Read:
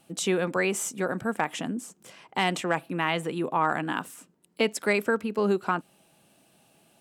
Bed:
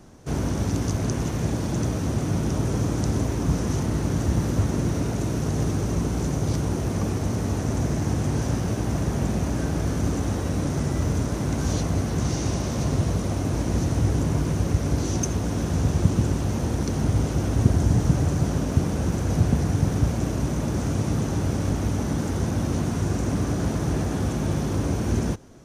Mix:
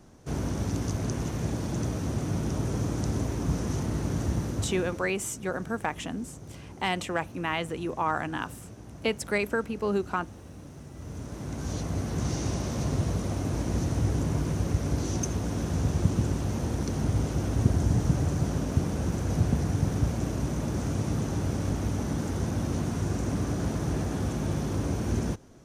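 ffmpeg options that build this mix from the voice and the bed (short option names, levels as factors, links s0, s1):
-filter_complex "[0:a]adelay=4450,volume=0.708[s0];[1:a]volume=3.35,afade=t=out:st=4.25:d=0.89:silence=0.177828,afade=t=in:st=10.92:d=1.37:silence=0.16788[s1];[s0][s1]amix=inputs=2:normalize=0"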